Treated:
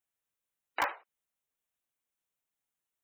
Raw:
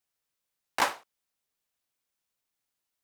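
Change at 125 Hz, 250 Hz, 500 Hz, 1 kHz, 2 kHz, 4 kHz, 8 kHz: n/a, -8.0 dB, -5.0 dB, -4.5 dB, -3.5 dB, -10.0 dB, -14.0 dB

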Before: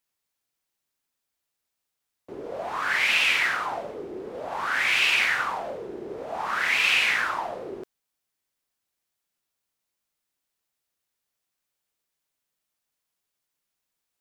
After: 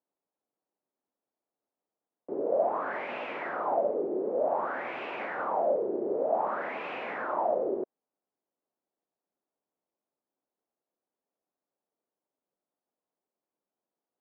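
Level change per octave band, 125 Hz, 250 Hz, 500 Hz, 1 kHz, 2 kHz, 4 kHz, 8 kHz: n/a, +4.0 dB, +7.0 dB, -1.5 dB, -16.5 dB, under -25 dB, under -35 dB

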